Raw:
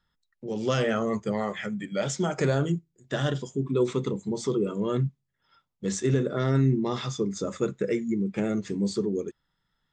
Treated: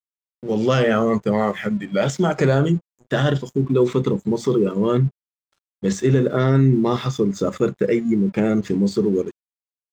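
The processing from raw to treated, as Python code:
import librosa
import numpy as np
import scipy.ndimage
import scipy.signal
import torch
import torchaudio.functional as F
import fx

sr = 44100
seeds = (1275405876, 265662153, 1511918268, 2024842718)

p1 = fx.high_shelf(x, sr, hz=5300.0, db=-10.0)
p2 = fx.level_steps(p1, sr, step_db=16)
p3 = p1 + (p2 * librosa.db_to_amplitude(2.0))
p4 = np.sign(p3) * np.maximum(np.abs(p3) - 10.0 ** (-51.5 / 20.0), 0.0)
y = p4 * librosa.db_to_amplitude(4.5)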